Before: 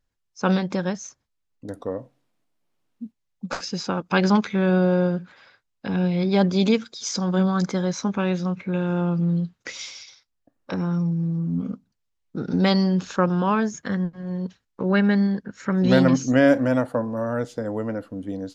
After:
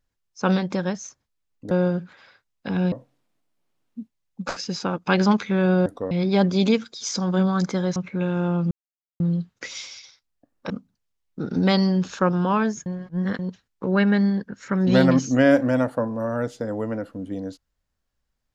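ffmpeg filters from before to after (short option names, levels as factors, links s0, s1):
-filter_complex "[0:a]asplit=10[s0][s1][s2][s3][s4][s5][s6][s7][s8][s9];[s0]atrim=end=1.712[s10];[s1]atrim=start=4.898:end=6.112[s11];[s2]atrim=start=1.958:end=4.902[s12];[s3]atrim=start=1.708:end=1.962[s13];[s4]atrim=start=6.108:end=7.962[s14];[s5]atrim=start=8.488:end=9.24,asetpts=PTS-STARTPTS,afade=t=out:st=0.748:d=0.004:c=hsin,apad=pad_dur=0.49[s15];[s6]atrim=start=9.24:end=10.742,asetpts=PTS-STARTPTS,afade=t=in:d=0.004:c=hsin[s16];[s7]atrim=start=11.668:end=13.832[s17];[s8]atrim=start=13.828:end=14.362,asetpts=PTS-STARTPTS,areverse[s18];[s9]atrim=start=14.358[s19];[s10][s11]acrossfade=d=0.004:c1=hsin:c2=hsin[s20];[s20][s12]acrossfade=d=0.004:c1=hsin:c2=hsin[s21];[s21][s13]acrossfade=d=0.004:c1=hsin:c2=hsin[s22];[s22][s14]acrossfade=d=0.004:c1=hsin:c2=hsin[s23];[s15][s16]concat=n=2:v=0:a=1[s24];[s23][s24]acrossfade=d=0.004:c1=hsin:c2=hsin[s25];[s25][s17]acrossfade=d=0.004:c1=hsin:c2=hsin[s26];[s26][s18]acrossfade=d=0.004:c1=hsin:c2=hsin[s27];[s27][s19]acrossfade=d=0.004:c1=hsin:c2=hsin"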